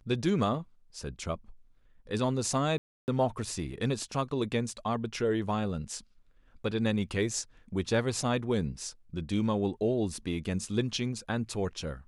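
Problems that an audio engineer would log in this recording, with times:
2.78–3.08 s: dropout 299 ms

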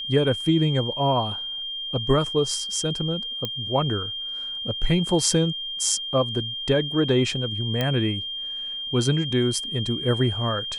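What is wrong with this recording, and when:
whine 3.2 kHz -29 dBFS
3.45 s: pop -13 dBFS
7.81 s: pop -11 dBFS

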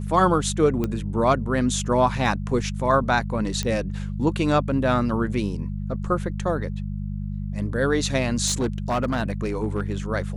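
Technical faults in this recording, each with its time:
hum 50 Hz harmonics 4 -29 dBFS
0.84 s: pop -13 dBFS
3.63 s: pop -13 dBFS
8.46–9.94 s: clipped -18.5 dBFS

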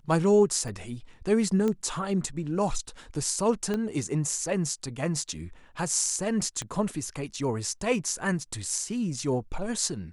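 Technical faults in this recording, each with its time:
0.68 s: dropout 2.5 ms
1.68 s: pop -17 dBFS
3.74 s: pop -17 dBFS
6.62 s: pop -19 dBFS

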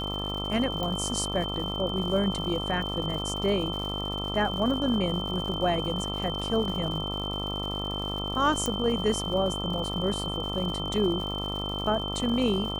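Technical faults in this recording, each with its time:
buzz 50 Hz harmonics 27 -34 dBFS
crackle 150 per s -36 dBFS
whine 3.1 kHz -33 dBFS
0.83 s: pop -18 dBFS
8.66 s: pop

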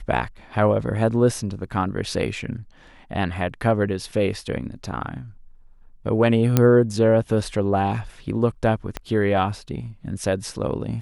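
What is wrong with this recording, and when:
6.57 s: pop -3 dBFS
8.97 s: pop -13 dBFS

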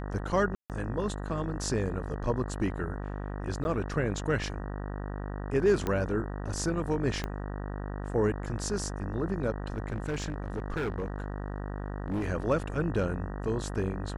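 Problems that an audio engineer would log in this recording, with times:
buzz 50 Hz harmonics 38 -36 dBFS
0.55–0.70 s: dropout 148 ms
3.64–3.65 s: dropout
5.87 s: pop -17 dBFS
7.24 s: pop -19 dBFS
9.76–12.25 s: clipped -27.5 dBFS

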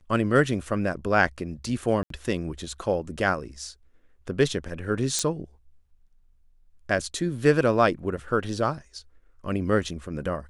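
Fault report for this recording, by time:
2.03–2.10 s: dropout 73 ms
5.19 s: pop -10 dBFS

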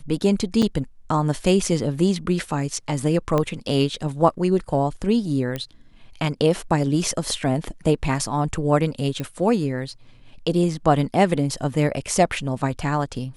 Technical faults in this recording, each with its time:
0.62–0.63 s: dropout 5.9 ms
3.38 s: pop -10 dBFS
5.56 s: pop -14 dBFS
9.20 s: pop -15 dBFS

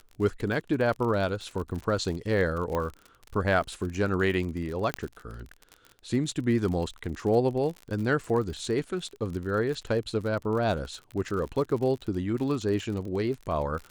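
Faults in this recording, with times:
crackle 50 per s -34 dBFS
2.75 s: pop -17 dBFS
4.94 s: pop -13 dBFS

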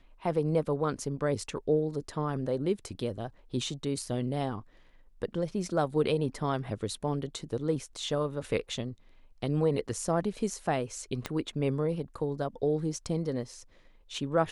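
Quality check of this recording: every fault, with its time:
11.26 s: pop -17 dBFS

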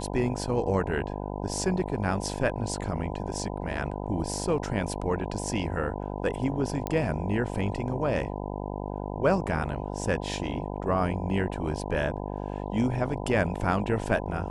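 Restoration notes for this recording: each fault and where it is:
buzz 50 Hz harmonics 20 -34 dBFS
6.87 s: pop -16 dBFS

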